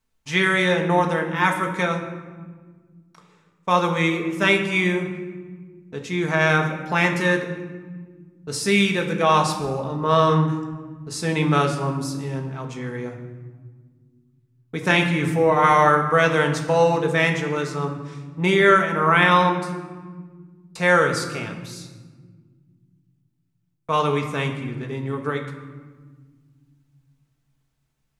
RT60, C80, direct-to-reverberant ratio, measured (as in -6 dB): 1.6 s, 10.0 dB, 2.0 dB